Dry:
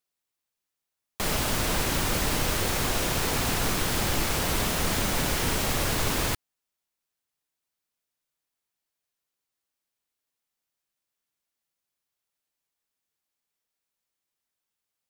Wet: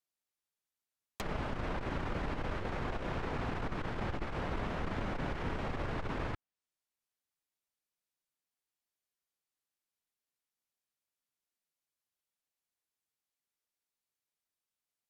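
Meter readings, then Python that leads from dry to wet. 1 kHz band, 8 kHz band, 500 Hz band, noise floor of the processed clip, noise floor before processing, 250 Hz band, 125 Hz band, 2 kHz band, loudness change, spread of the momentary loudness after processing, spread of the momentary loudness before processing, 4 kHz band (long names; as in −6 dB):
−9.0 dB, −32.0 dB, −8.5 dB, below −85 dBFS, below −85 dBFS, −8.5 dB, −8.5 dB, −12.0 dB, −12.5 dB, 2 LU, 1 LU, −21.0 dB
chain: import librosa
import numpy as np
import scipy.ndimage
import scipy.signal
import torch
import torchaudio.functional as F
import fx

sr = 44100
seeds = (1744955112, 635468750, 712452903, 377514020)

y = fx.env_lowpass_down(x, sr, base_hz=1800.0, full_db=-27.5)
y = fx.transformer_sat(y, sr, knee_hz=70.0)
y = F.gain(torch.from_numpy(y), -7.0).numpy()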